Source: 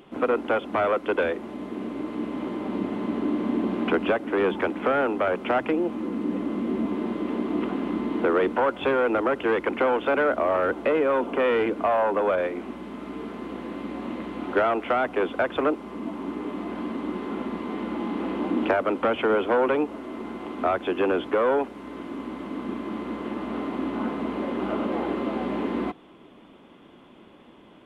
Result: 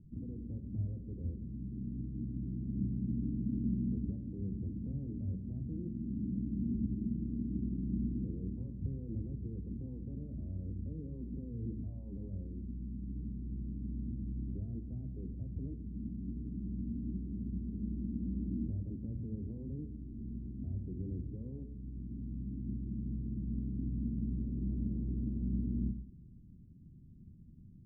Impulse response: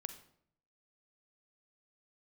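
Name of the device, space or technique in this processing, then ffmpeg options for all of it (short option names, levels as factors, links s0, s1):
club heard from the street: -filter_complex "[0:a]alimiter=limit=0.141:level=0:latency=1,lowpass=f=130:w=0.5412,lowpass=f=130:w=1.3066[s0];[1:a]atrim=start_sample=2205[s1];[s0][s1]afir=irnorm=-1:irlink=0,volume=5.31"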